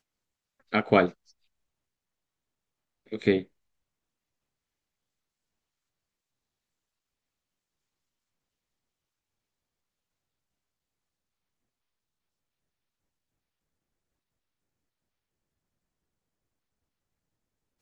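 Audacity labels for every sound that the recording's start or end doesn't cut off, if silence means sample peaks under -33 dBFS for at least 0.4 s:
0.730000	1.090000	sound
3.130000	3.420000	sound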